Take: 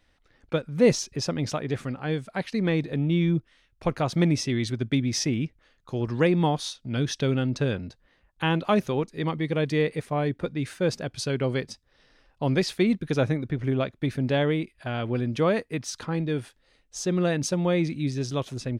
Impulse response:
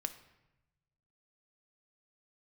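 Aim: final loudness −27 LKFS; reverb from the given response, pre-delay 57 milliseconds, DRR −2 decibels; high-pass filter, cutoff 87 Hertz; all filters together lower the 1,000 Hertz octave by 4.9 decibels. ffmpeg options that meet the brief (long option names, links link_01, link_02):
-filter_complex "[0:a]highpass=87,equalizer=frequency=1000:width_type=o:gain=-7,asplit=2[link_01][link_02];[1:a]atrim=start_sample=2205,adelay=57[link_03];[link_02][link_03]afir=irnorm=-1:irlink=0,volume=2.5dB[link_04];[link_01][link_04]amix=inputs=2:normalize=0,volume=-3.5dB"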